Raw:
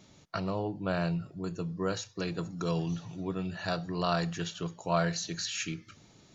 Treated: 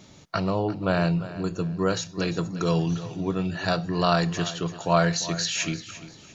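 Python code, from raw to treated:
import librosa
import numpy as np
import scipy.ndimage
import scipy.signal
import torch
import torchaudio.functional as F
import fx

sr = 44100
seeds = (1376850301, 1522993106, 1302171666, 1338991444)

y = fx.echo_feedback(x, sr, ms=346, feedback_pct=33, wet_db=-15.0)
y = y * 10.0 ** (7.5 / 20.0)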